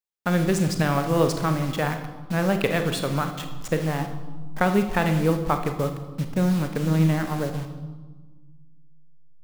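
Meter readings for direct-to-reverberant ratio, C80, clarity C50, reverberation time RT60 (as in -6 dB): 6.5 dB, 11.0 dB, 9.0 dB, 1.4 s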